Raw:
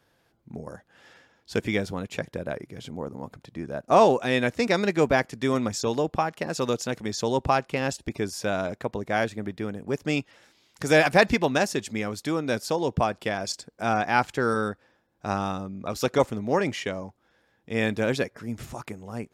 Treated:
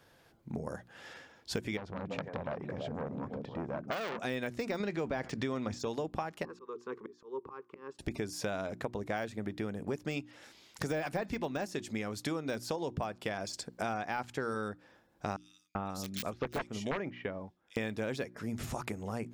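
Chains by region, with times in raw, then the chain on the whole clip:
0:01.77–0:04.19: head-to-tape spacing loss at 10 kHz 24 dB + echo through a band-pass that steps 167 ms, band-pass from 210 Hz, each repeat 1.4 octaves, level −5 dB + saturating transformer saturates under 3,500 Hz
0:04.80–0:05.79: low-pass filter 5,800 Hz + envelope flattener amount 50%
0:06.45–0:07.99: pair of resonant band-passes 670 Hz, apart 1.4 octaves + volume swells 406 ms
0:15.36–0:17.77: wrap-around overflow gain 14 dB + multiband delay without the direct sound highs, lows 390 ms, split 2,800 Hz + expander for the loud parts, over −43 dBFS
whole clip: de-essing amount 75%; mains-hum notches 60/120/180/240/300/360 Hz; downward compressor 6 to 1, threshold −37 dBFS; level +3.5 dB

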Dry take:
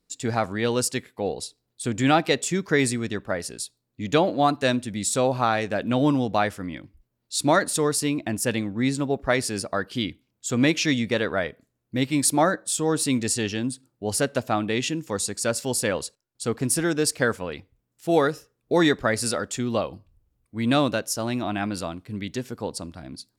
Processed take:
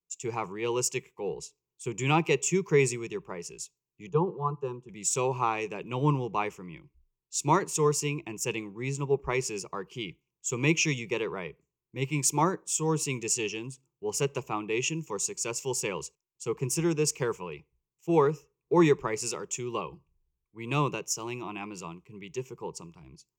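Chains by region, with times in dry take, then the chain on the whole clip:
0:04.09–0:04.89: low-pass filter 1,000 Hz 6 dB per octave + phaser with its sweep stopped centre 420 Hz, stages 8
whole clip: EQ curve with evenly spaced ripples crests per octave 0.74, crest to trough 17 dB; multiband upward and downward expander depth 40%; level −8 dB

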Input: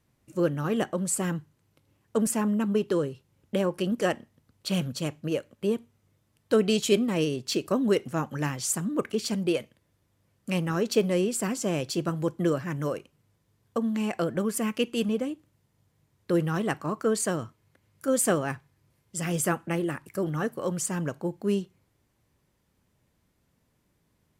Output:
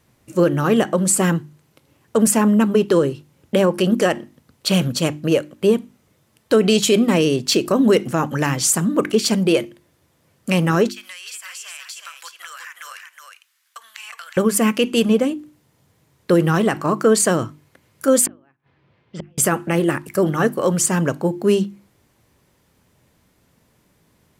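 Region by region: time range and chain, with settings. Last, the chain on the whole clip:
0:10.89–0:14.37: high-pass filter 1,400 Hz 24 dB per octave + downward compressor, threshold −45 dBFS + single-tap delay 364 ms −5 dB
0:18.26–0:19.38: low-pass filter 3,500 Hz 24 dB per octave + low-shelf EQ 71 Hz −11 dB + gate with flip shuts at −27 dBFS, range −40 dB
whole clip: low-shelf EQ 77 Hz −6.5 dB; mains-hum notches 50/100/150/200/250/300/350 Hz; boost into a limiter +17.5 dB; level −5 dB

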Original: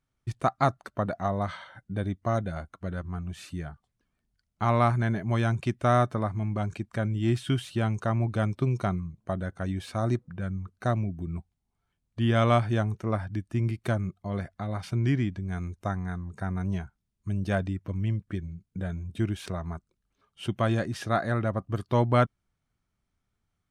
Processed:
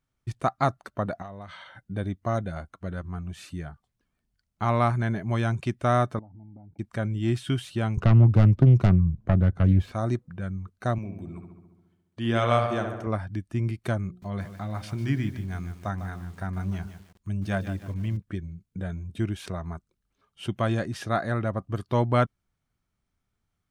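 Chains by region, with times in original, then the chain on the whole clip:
0:01.22–0:01.80: parametric band 2,800 Hz +5 dB 1.1 octaves + downward compressor 3 to 1, threshold −41 dBFS
0:06.19–0:06.79: comb filter 1.4 ms, depth 69% + downward compressor 12 to 1, threshold −30 dBFS + formant resonators in series u
0:07.97–0:09.92: phase distortion by the signal itself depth 0.48 ms + RIAA equalisation playback + multiband upward and downward compressor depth 40%
0:10.98–0:13.07: high-pass filter 240 Hz 6 dB per octave + feedback echo with a low-pass in the loop 69 ms, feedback 69%, low-pass 3,100 Hz, level −5.5 dB
0:14.07–0:18.17: mains-hum notches 60/120/180/240/300/360/420/480/540 Hz + dynamic equaliser 450 Hz, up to −5 dB, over −46 dBFS, Q 2 + feedback echo at a low word length 150 ms, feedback 35%, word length 8 bits, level −10.5 dB
whole clip: no processing

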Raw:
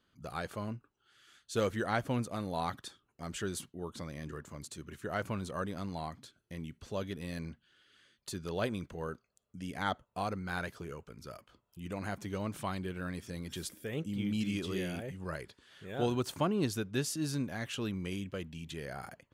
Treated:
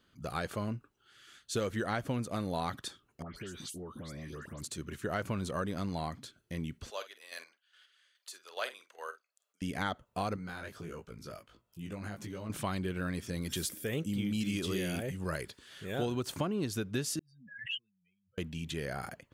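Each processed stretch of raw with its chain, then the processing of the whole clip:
0:03.22–0:04.61: all-pass dispersion highs, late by 138 ms, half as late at 2,400 Hz + downward compressor 12 to 1, threshold −44 dBFS
0:06.90–0:09.62: Bessel high-pass filter 890 Hz, order 4 + square-wave tremolo 2.4 Hz, depth 60%, duty 30% + double-tracking delay 48 ms −12.5 dB
0:10.36–0:12.50: downward compressor, threshold −39 dBFS + chorus effect 1.5 Hz, delay 17.5 ms, depth 2.3 ms
0:13.41–0:16.05: de-essing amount 80% + high-shelf EQ 5,700 Hz +7.5 dB
0:17.19–0:18.38: expanding power law on the bin magnitudes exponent 3.6 + inverse Chebyshev high-pass filter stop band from 790 Hz + background raised ahead of every attack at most 73 dB per second
whole clip: parametric band 880 Hz −2.5 dB; downward compressor 5 to 1, threshold −35 dBFS; level +5 dB

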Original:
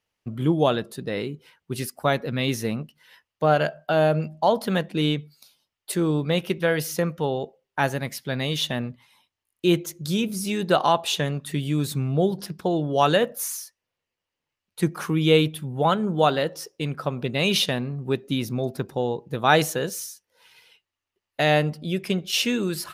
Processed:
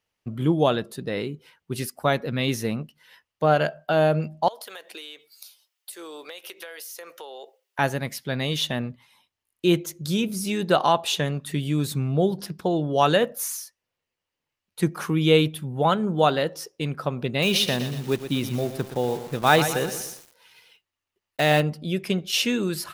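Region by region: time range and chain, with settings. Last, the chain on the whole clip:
0:04.48–0:07.79: high-pass filter 380 Hz 24 dB per octave + spectral tilt +3 dB per octave + downward compressor 16 to 1, threshold −35 dBFS
0:17.42–0:21.61: one scale factor per block 5 bits + feedback echo at a low word length 120 ms, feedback 55%, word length 6 bits, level −10 dB
whole clip: no processing

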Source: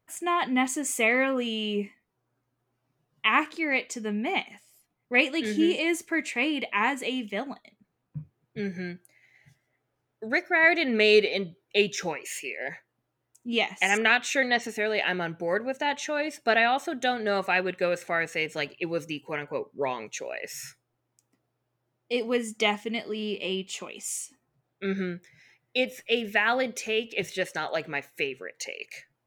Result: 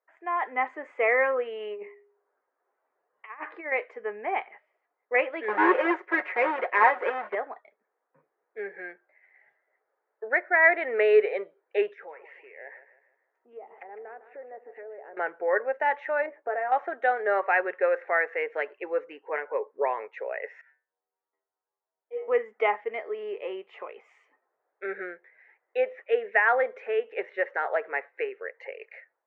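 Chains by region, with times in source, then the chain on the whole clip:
0:01.60–0:03.72: tuned comb filter 410 Hz, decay 0.63 s, mix 30% + compressor whose output falls as the input rises −33 dBFS, ratio −0.5
0:05.48–0:07.35: each half-wave held at its own peak + comb filter 5.5 ms, depth 62%
0:11.93–0:15.17: treble cut that deepens with the level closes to 560 Hz, closed at −23 dBFS + downward compressor 2.5 to 1, threshold −47 dBFS + repeating echo 156 ms, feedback 40%, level −13 dB
0:16.26–0:16.72: Bessel low-pass filter 990 Hz + downward compressor 3 to 1, threshold −31 dBFS + double-tracking delay 16 ms −8 dB
0:20.61–0:22.28: high-frequency loss of the air 230 metres + notch filter 2,600 Hz, Q 11 + stiff-string resonator 77 Hz, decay 0.53 s, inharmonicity 0.002
whole clip: elliptic band-pass filter 440–1,900 Hz, stop band 80 dB; automatic gain control gain up to 6.5 dB; level −3 dB

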